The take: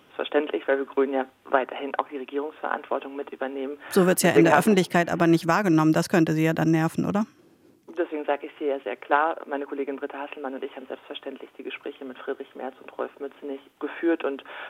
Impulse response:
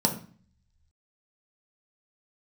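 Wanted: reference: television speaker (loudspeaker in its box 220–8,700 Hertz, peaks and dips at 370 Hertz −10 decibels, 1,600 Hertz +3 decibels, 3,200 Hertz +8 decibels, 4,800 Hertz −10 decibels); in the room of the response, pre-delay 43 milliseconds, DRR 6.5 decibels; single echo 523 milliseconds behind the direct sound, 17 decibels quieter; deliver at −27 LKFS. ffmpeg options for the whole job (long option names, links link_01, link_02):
-filter_complex "[0:a]aecho=1:1:523:0.141,asplit=2[link_01][link_02];[1:a]atrim=start_sample=2205,adelay=43[link_03];[link_02][link_03]afir=irnorm=-1:irlink=0,volume=-17dB[link_04];[link_01][link_04]amix=inputs=2:normalize=0,highpass=frequency=220:width=0.5412,highpass=frequency=220:width=1.3066,equalizer=frequency=370:width_type=q:width=4:gain=-10,equalizer=frequency=1600:width_type=q:width=4:gain=3,equalizer=frequency=3200:width_type=q:width=4:gain=8,equalizer=frequency=4800:width_type=q:width=4:gain=-10,lowpass=frequency=8700:width=0.5412,lowpass=frequency=8700:width=1.3066,volume=-2dB"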